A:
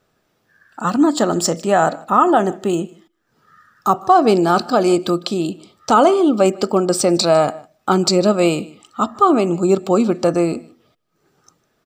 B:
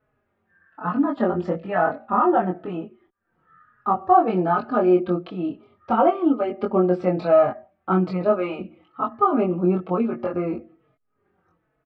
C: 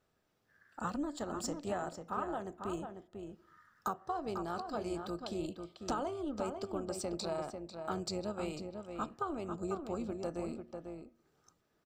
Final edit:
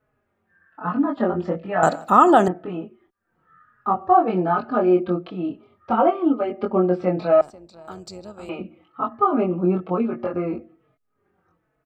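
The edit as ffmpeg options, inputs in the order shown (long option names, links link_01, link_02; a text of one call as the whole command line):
ffmpeg -i take0.wav -i take1.wav -i take2.wav -filter_complex "[1:a]asplit=3[link_01][link_02][link_03];[link_01]atrim=end=1.832[link_04];[0:a]atrim=start=1.828:end=2.482[link_05];[link_02]atrim=start=2.478:end=7.412[link_06];[2:a]atrim=start=7.408:end=8.492[link_07];[link_03]atrim=start=8.488[link_08];[link_04][link_05]acrossfade=duration=0.004:curve1=hsin:curve2=hsin[link_09];[link_09][link_06]acrossfade=duration=0.004:curve1=hsin:curve2=hsin[link_10];[link_10][link_07]acrossfade=duration=0.004:curve1=hsin:curve2=hsin[link_11];[link_11][link_08]acrossfade=duration=0.004:curve1=hsin:curve2=hsin" out.wav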